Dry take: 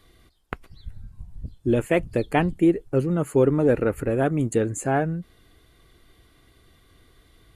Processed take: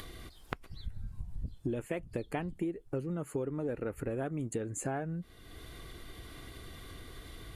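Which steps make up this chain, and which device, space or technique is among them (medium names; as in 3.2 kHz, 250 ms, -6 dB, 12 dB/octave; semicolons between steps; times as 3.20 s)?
upward and downward compression (upward compressor, threshold -39 dBFS; compression 8:1, threshold -34 dBFS, peak gain reduction 19.5 dB); trim +1 dB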